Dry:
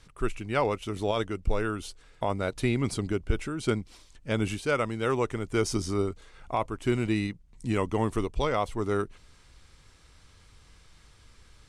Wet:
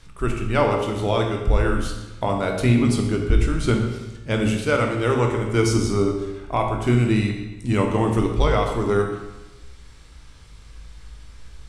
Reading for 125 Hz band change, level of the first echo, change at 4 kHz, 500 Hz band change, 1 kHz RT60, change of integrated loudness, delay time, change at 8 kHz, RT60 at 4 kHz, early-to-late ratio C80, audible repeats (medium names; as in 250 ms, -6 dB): +10.5 dB, no echo, +6.5 dB, +7.0 dB, 1.1 s, +8.0 dB, no echo, +6.0 dB, 0.95 s, 6.5 dB, no echo